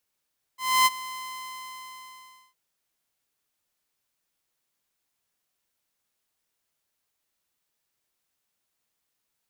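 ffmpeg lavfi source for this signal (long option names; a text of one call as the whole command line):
ffmpeg -f lavfi -i "aevalsrc='0.224*(2*mod(1030*t,1)-1)':duration=1.96:sample_rate=44100,afade=type=in:duration=0.28,afade=type=out:start_time=0.28:duration=0.031:silence=0.119,afade=type=out:start_time=0.54:duration=1.42" out.wav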